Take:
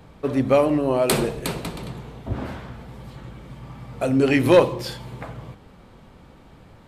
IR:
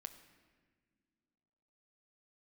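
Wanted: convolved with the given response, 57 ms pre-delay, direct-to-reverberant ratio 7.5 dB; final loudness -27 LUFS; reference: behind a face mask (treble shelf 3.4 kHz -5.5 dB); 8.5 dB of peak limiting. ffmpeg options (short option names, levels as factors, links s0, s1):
-filter_complex "[0:a]alimiter=limit=0.188:level=0:latency=1,asplit=2[s0][s1];[1:a]atrim=start_sample=2205,adelay=57[s2];[s1][s2]afir=irnorm=-1:irlink=0,volume=0.75[s3];[s0][s3]amix=inputs=2:normalize=0,highshelf=f=3400:g=-5.5,volume=0.841"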